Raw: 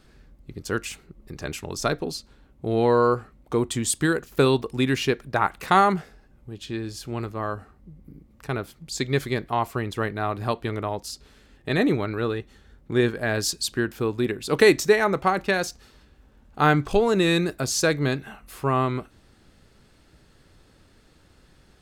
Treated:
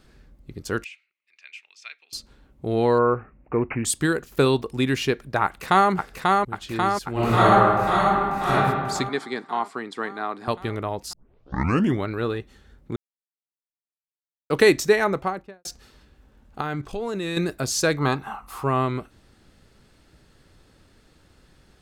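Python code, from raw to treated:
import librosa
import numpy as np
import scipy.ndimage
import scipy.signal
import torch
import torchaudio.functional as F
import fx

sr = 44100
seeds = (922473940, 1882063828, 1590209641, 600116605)

y = fx.ladder_bandpass(x, sr, hz=2600.0, resonance_pct=70, at=(0.84, 2.13))
y = fx.resample_bad(y, sr, factor=8, down='none', up='filtered', at=(2.98, 3.85))
y = fx.echo_throw(y, sr, start_s=5.44, length_s=0.46, ms=540, feedback_pct=70, wet_db=-2.5)
y = fx.reverb_throw(y, sr, start_s=7.12, length_s=1.41, rt60_s=1.6, drr_db=-10.5)
y = fx.cabinet(y, sr, low_hz=230.0, low_slope=24, high_hz=8400.0, hz=(350.0, 570.0, 2700.0, 6300.0), db=(-4, -9, -8, -7), at=(9.09, 10.48))
y = fx.studio_fade_out(y, sr, start_s=15.03, length_s=0.62)
y = fx.level_steps(y, sr, step_db=14, at=(16.61, 17.37))
y = fx.band_shelf(y, sr, hz=1000.0, db=14.5, octaves=1.0, at=(17.97, 18.64))
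y = fx.edit(y, sr, fx.tape_start(start_s=11.13, length_s=0.92),
    fx.silence(start_s=12.96, length_s=1.54), tone=tone)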